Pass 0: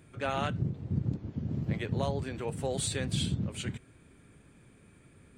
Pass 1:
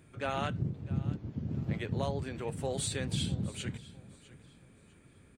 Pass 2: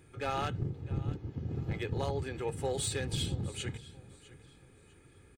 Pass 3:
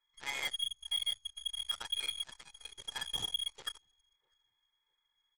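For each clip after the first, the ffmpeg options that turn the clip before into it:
-af "aecho=1:1:652|1304|1956:0.112|0.0348|0.0108,volume=-2dB"
-af "aeval=exprs='clip(val(0),-1,0.0335)':c=same,aecho=1:1:2.4:0.51"
-af "afftfilt=real='re*(1-between(b*sr/4096,130,900))':imag='im*(1-between(b*sr/4096,130,900))':win_size=4096:overlap=0.75,lowpass=f=2.9k:t=q:w=0.5098,lowpass=f=2.9k:t=q:w=0.6013,lowpass=f=2.9k:t=q:w=0.9,lowpass=f=2.9k:t=q:w=2.563,afreqshift=-3400,aeval=exprs='0.0596*(cos(1*acos(clip(val(0)/0.0596,-1,1)))-cos(1*PI/2))+0.00944*(cos(7*acos(clip(val(0)/0.0596,-1,1)))-cos(7*PI/2))+0.00133*(cos(8*acos(clip(val(0)/0.0596,-1,1)))-cos(8*PI/2))':c=same"

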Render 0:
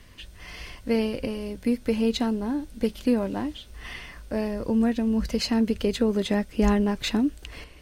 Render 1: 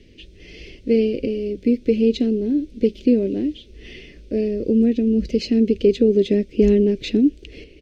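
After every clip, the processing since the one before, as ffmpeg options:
-af "firequalizer=gain_entry='entry(100,0);entry(390,13);entry(910,-27);entry(2300,1);entry(6000,-4);entry(10000,-20)':delay=0.05:min_phase=1"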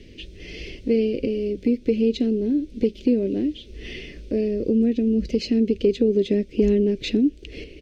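-af "acompressor=threshold=-33dB:ratio=1.5,volume=4dB"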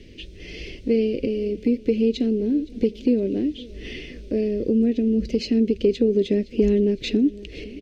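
-af "aecho=1:1:514|1028|1542|2056:0.0841|0.0429|0.0219|0.0112"

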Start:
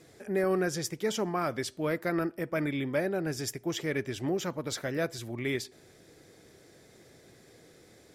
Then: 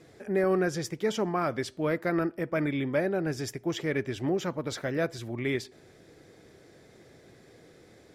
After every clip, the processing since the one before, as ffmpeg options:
-af "aemphasis=mode=reproduction:type=cd,volume=2dB"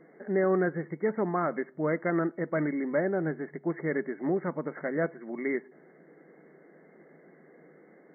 -af "afftfilt=real='re*between(b*sr/4096,140,2200)':imag='im*between(b*sr/4096,140,2200)':win_size=4096:overlap=0.75"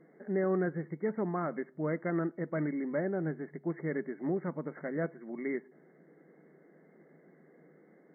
-af "equalizer=f=120:w=0.44:g=6,volume=-7dB"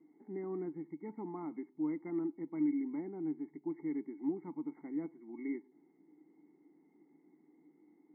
-filter_complex "[0:a]asplit=3[a][b][c];[a]bandpass=f=300:t=q:w=8,volume=0dB[d];[b]bandpass=f=870:t=q:w=8,volume=-6dB[e];[c]bandpass=f=2.24k:t=q:w=8,volume=-9dB[f];[d][e][f]amix=inputs=3:normalize=0,volume=4dB"

